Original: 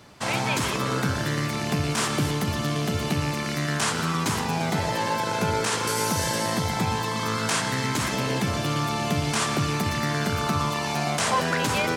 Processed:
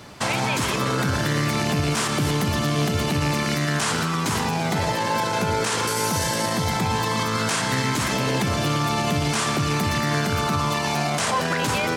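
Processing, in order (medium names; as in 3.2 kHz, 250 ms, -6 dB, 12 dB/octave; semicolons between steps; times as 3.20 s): peak limiter -21.5 dBFS, peak gain reduction 8.5 dB; trim +7.5 dB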